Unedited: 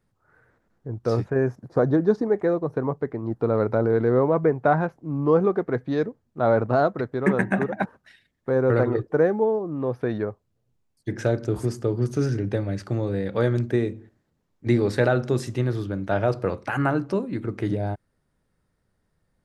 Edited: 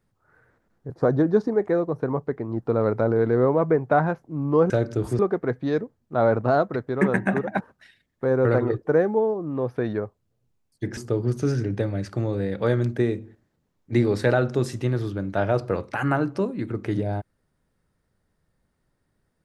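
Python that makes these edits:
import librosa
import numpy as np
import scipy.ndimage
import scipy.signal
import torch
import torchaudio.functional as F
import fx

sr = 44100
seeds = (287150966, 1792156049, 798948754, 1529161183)

y = fx.edit(x, sr, fx.cut(start_s=0.9, length_s=0.74),
    fx.move(start_s=11.22, length_s=0.49, to_s=5.44), tone=tone)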